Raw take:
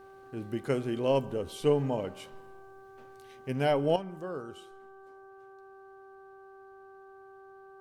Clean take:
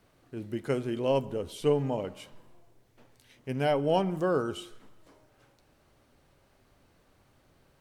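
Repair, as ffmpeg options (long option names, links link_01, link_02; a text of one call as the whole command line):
ffmpeg -i in.wav -af "bandreject=frequency=387.8:width_type=h:width=4,bandreject=frequency=775.6:width_type=h:width=4,bandreject=frequency=1163.4:width_type=h:width=4,bandreject=frequency=1551.2:width_type=h:width=4,asetnsamples=nb_out_samples=441:pad=0,asendcmd='3.96 volume volume 11dB',volume=0dB" out.wav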